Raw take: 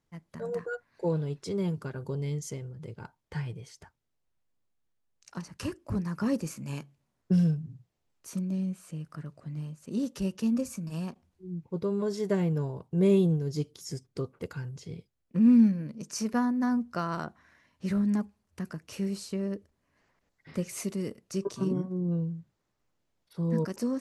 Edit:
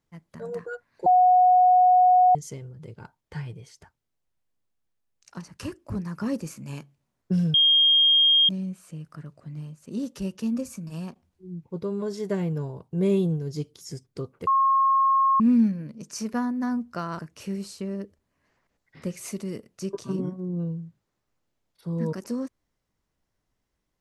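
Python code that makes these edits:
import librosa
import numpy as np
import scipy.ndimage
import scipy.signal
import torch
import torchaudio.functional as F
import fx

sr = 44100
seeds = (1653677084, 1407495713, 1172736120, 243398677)

y = fx.edit(x, sr, fx.bleep(start_s=1.06, length_s=1.29, hz=731.0, db=-13.5),
    fx.bleep(start_s=7.54, length_s=0.95, hz=3230.0, db=-15.0),
    fx.bleep(start_s=14.47, length_s=0.93, hz=1080.0, db=-17.0),
    fx.cut(start_s=17.19, length_s=1.52), tone=tone)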